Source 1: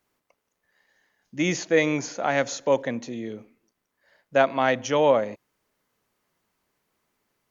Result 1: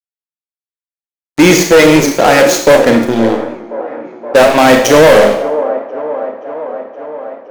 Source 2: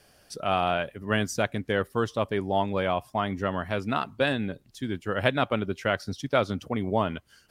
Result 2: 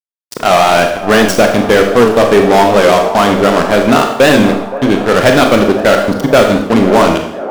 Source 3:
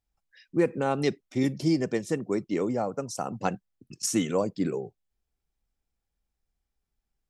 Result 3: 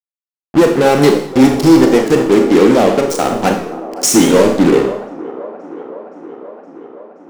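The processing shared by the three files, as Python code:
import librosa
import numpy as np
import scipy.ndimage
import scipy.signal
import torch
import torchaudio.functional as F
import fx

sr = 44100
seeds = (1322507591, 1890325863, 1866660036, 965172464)

p1 = np.sign(x) * np.maximum(np.abs(x) - 10.0 ** (-36.0 / 20.0), 0.0)
p2 = fx.leveller(p1, sr, passes=5)
p3 = fx.peak_eq(p2, sr, hz=100.0, db=-9.5, octaves=0.41)
p4 = p3 + fx.echo_wet_bandpass(p3, sr, ms=521, feedback_pct=73, hz=610.0, wet_db=-13.0, dry=0)
p5 = fx.rev_schroeder(p4, sr, rt60_s=0.7, comb_ms=27, drr_db=3.5)
p6 = fx.dynamic_eq(p5, sr, hz=370.0, q=1.1, threshold_db=-23.0, ratio=4.0, max_db=4)
p7 = np.clip(10.0 ** (6.5 / 20.0) * p6, -1.0, 1.0) / 10.0 ** (6.5 / 20.0)
p8 = fx.record_warp(p7, sr, rpm=78.0, depth_cents=100.0)
y = p8 * 10.0 ** (4.5 / 20.0)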